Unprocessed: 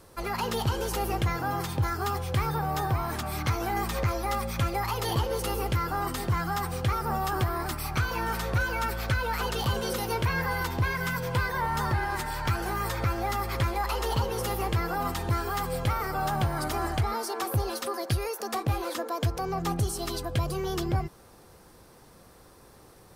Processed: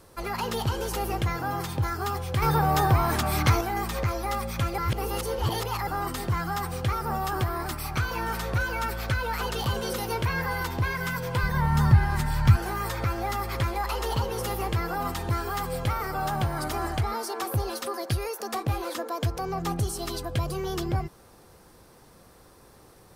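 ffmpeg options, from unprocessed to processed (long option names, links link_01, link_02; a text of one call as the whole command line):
ffmpeg -i in.wav -filter_complex "[0:a]asettb=1/sr,asplit=3[link_01][link_02][link_03];[link_01]atrim=end=2.424[link_04];[link_02]atrim=start=2.42:end=3.61,asetpts=PTS-STARTPTS,afade=type=in:duration=0.004:curve=qsin,afade=type=out:start_time=1.186:duration=0.004:curve=qsin,acontrast=70[link_05];[link_03]atrim=start=3.606[link_06];[link_04][link_05]acrossfade=duration=0.004:curve1=hsin:curve2=qsin[link_07];[link_07][link_06]acrossfade=duration=0.004:curve1=qsin:curve2=hsin,asettb=1/sr,asplit=3[link_08][link_09][link_10];[link_08]atrim=end=11.434[link_11];[link_09]atrim=start=11.43:end=12.57,asetpts=PTS-STARTPTS,afade=type=in:duration=0.004:curve=qsin,afade=type=out:start_time=1.136:duration=0.004:curve=qsin,lowshelf=frequency=250:width_type=q:width=1.5:gain=10[link_12];[link_10]atrim=start=12.566[link_13];[link_11][link_12]acrossfade=duration=0.004:curve1=hsin:curve2=qsin[link_14];[link_14][link_13]acrossfade=duration=0.004:curve1=qsin:curve2=hsin,asplit=3[link_15][link_16][link_17];[link_15]atrim=end=4.782[link_18];[link_16]atrim=start=4.778:end=5.872,asetpts=PTS-STARTPTS,areverse[link_19];[link_17]atrim=start=5.868[link_20];[link_18][link_19]acrossfade=duration=0.004:curve1=hsin:curve2=hsin[link_21];[link_21][link_20]acrossfade=duration=0.004:curve1=hsin:curve2=hsin" out.wav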